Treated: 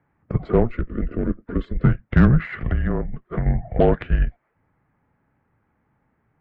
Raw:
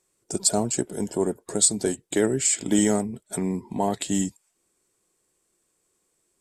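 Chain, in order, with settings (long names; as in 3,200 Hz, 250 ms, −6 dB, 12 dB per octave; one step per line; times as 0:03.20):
in parallel at +2 dB: brickwall limiter −16.5 dBFS, peak gain reduction 10.5 dB
0:02.69–0:03.46: on the sum: downward compressor 6 to 1, threshold −20 dBFS, peak gain reduction 8.5 dB
single-sideband voice off tune −240 Hz 220–2,200 Hz
harmonic generator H 8 −28 dB, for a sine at −8 dBFS
0:00.69–0:01.84: phaser with its sweep stopped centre 330 Hz, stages 4
level +4.5 dB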